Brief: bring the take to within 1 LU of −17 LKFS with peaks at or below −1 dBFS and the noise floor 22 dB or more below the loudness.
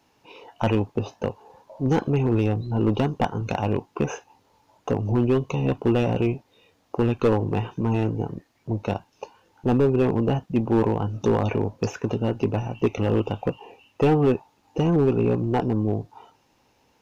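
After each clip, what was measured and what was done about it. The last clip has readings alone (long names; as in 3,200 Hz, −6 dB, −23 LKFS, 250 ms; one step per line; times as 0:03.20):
share of clipped samples 1.1%; peaks flattened at −13.0 dBFS; integrated loudness −24.5 LKFS; sample peak −13.0 dBFS; target loudness −17.0 LKFS
→ clipped peaks rebuilt −13 dBFS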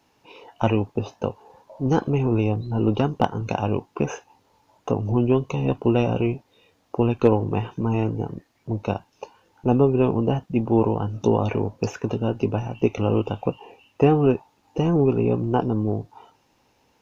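share of clipped samples 0.0%; integrated loudness −23.5 LKFS; sample peak −4.0 dBFS; target loudness −17.0 LKFS
→ level +6.5 dB
brickwall limiter −1 dBFS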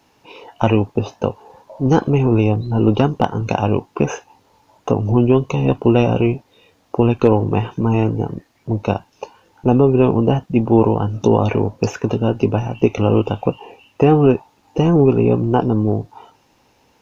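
integrated loudness −17.5 LKFS; sample peak −1.0 dBFS; background noise floor −58 dBFS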